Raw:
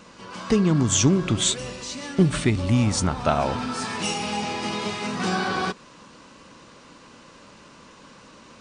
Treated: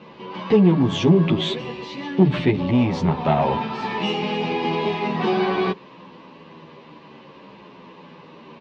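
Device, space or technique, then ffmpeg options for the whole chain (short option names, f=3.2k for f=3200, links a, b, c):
barber-pole flanger into a guitar amplifier: -filter_complex "[0:a]asplit=2[a][b];[b]adelay=10.6,afreqshift=-0.57[c];[a][c]amix=inputs=2:normalize=1,asoftclip=type=tanh:threshold=-17dB,highpass=96,equalizer=f=100:t=q:w=4:g=-9,equalizer=f=160:t=q:w=4:g=7,equalizer=f=390:t=q:w=4:g=7,equalizer=f=910:t=q:w=4:g=5,equalizer=f=1.4k:t=q:w=4:g=-10,lowpass=f=3.5k:w=0.5412,lowpass=f=3.5k:w=1.3066,volume=6.5dB"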